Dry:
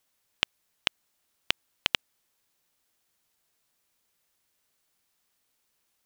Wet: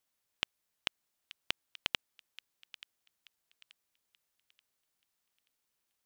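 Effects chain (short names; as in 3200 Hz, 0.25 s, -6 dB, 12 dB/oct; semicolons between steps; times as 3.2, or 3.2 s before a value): thin delay 0.881 s, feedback 32%, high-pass 1700 Hz, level -16 dB; gain -8 dB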